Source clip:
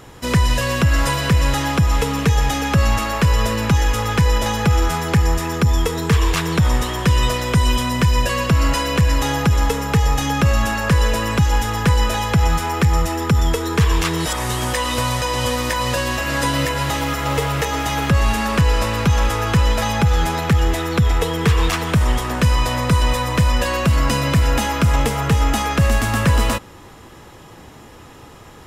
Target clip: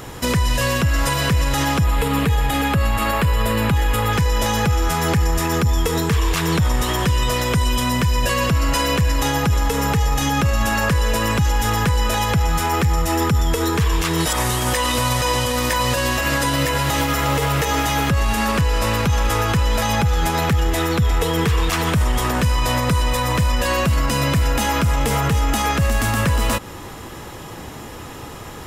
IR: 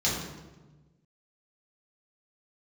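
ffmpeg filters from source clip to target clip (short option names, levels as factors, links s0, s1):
-filter_complex "[0:a]asettb=1/sr,asplit=3[s0][s1][s2];[s0]atrim=end=1.844[s3];[s1]atrim=start=1.84:end=4.13,asetpts=PTS-STARTPTS,afade=t=in:d=0.004:c=qsin,afade=t=out:st=2.286:d=0.004:c=qsin,equalizer=f=5900:t=o:w=0.43:g=-13.5[s4];[s2]atrim=start=4.126[s5];[s3][s4]acrossfade=d=0.004:c1=hsin:c2=qsin[s6];[s6][s5]acrossfade=d=0.004:c1=qsin:c2=hsin,alimiter=limit=0.133:level=0:latency=1:release=125,highshelf=f=11000:g=7,volume=2.24"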